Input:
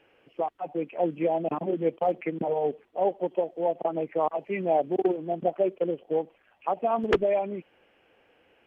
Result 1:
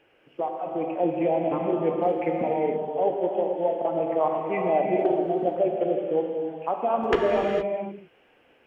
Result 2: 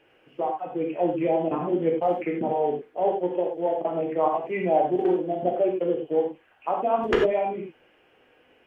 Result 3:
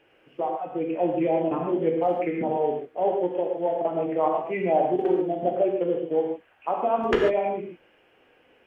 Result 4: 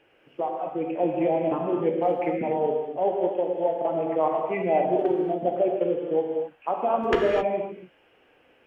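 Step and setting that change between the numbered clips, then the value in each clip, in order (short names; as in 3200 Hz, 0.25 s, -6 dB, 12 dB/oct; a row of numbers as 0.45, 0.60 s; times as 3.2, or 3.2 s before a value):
non-linear reverb, gate: 0.49, 0.12, 0.17, 0.29 s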